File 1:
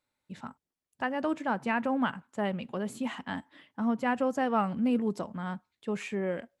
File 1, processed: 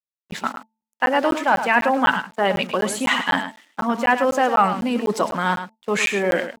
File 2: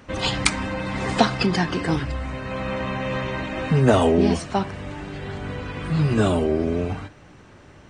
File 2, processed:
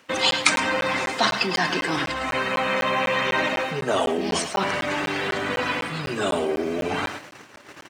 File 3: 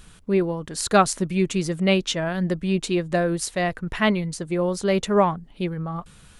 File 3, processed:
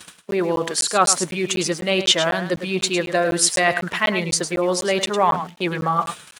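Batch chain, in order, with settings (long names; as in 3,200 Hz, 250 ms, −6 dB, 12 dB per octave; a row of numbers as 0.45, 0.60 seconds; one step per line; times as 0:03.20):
spectral magnitudes quantised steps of 15 dB
reversed playback
downward compressor 8 to 1, threshold −32 dBFS
reversed playback
high-shelf EQ 7,400 Hz +4 dB
centre clipping without the shift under −54.5 dBFS
hum removal 220.9 Hz, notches 4
noise gate −46 dBFS, range −15 dB
meter weighting curve A
on a send: single-tap delay 105 ms −10 dB
on the sum: regular buffer underruns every 0.25 s, samples 512, zero, from 0:00.31
normalise the peak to −2 dBFS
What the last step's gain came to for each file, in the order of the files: +20.0, +15.5, +18.5 decibels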